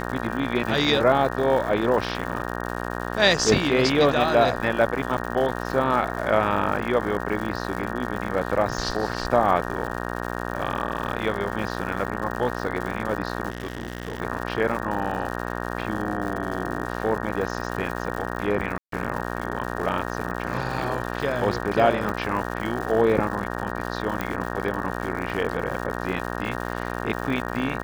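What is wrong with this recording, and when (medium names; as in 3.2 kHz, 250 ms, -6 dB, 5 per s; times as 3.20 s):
buzz 60 Hz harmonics 31 -30 dBFS
crackle 190 per s -31 dBFS
13.50–14.20 s: clipped -25 dBFS
18.78–18.92 s: dropout 143 ms
22.09 s: pop
24.21 s: pop -13 dBFS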